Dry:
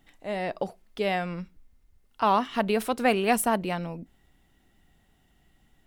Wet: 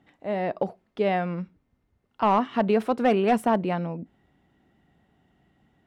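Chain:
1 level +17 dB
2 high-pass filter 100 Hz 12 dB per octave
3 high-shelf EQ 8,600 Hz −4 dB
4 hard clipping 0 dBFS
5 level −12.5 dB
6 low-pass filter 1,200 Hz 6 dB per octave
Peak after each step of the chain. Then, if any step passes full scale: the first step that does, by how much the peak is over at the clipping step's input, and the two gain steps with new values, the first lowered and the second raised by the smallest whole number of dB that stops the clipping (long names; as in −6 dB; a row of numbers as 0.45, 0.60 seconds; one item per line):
+9.0, +8.0, +8.0, 0.0, −12.5, −12.5 dBFS
step 1, 8.0 dB
step 1 +9 dB, step 5 −4.5 dB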